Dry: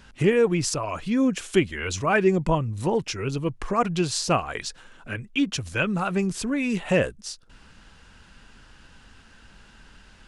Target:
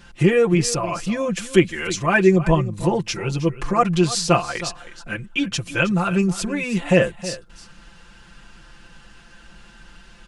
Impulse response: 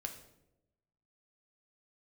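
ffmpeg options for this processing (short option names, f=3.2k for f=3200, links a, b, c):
-filter_complex "[0:a]aecho=1:1:5.8:0.91,asplit=2[a][b];[b]aecho=0:1:317:0.178[c];[a][c]amix=inputs=2:normalize=0,volume=1.5dB"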